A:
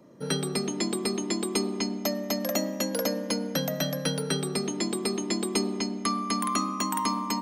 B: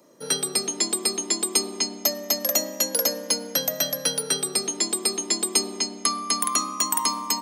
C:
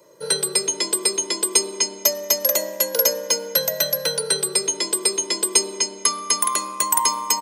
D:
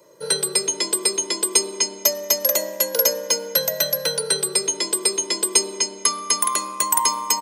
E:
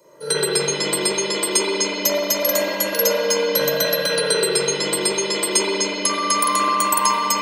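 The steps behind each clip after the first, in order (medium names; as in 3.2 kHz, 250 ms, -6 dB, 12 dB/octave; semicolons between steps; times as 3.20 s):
tone controls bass -14 dB, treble +11 dB; trim +1 dB
comb 2 ms, depth 94%; trim +1 dB
no audible change
spring tank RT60 2.5 s, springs 41/60 ms, chirp 75 ms, DRR -9 dB; trim -2 dB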